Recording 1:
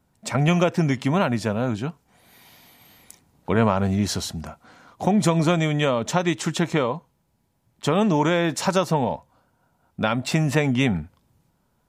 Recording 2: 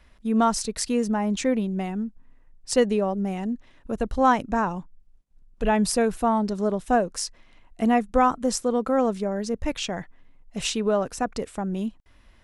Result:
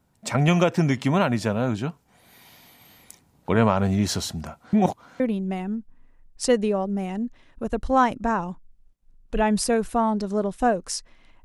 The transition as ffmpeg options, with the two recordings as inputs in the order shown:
ffmpeg -i cue0.wav -i cue1.wav -filter_complex "[0:a]apad=whole_dur=11.44,atrim=end=11.44,asplit=2[link_01][link_02];[link_01]atrim=end=4.732[link_03];[link_02]atrim=start=4.728:end=5.202,asetpts=PTS-STARTPTS,areverse[link_04];[1:a]atrim=start=1.478:end=7.72[link_05];[link_03][link_04]acrossfade=duration=0.004:curve1=hsin:curve2=hsin[link_06];[link_06][link_05]acrossfade=duration=0.004:curve1=hsin:curve2=hsin" out.wav

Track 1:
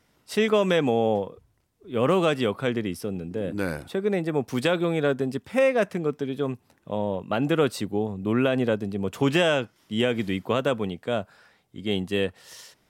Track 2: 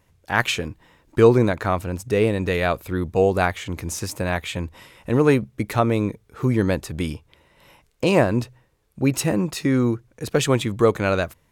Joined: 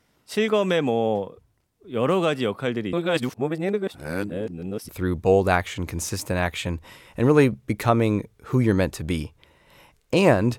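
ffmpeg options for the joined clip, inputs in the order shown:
ffmpeg -i cue0.wav -i cue1.wav -filter_complex "[0:a]apad=whole_dur=10.58,atrim=end=10.58,asplit=2[link_01][link_02];[link_01]atrim=end=2.932[link_03];[link_02]atrim=start=2.928:end=4.892,asetpts=PTS-STARTPTS,areverse[link_04];[1:a]atrim=start=2.788:end=8.48[link_05];[link_03][link_04]acrossfade=duration=0.004:curve1=hsin:curve2=hsin[link_06];[link_06][link_05]acrossfade=duration=0.004:curve1=hsin:curve2=hsin" out.wav

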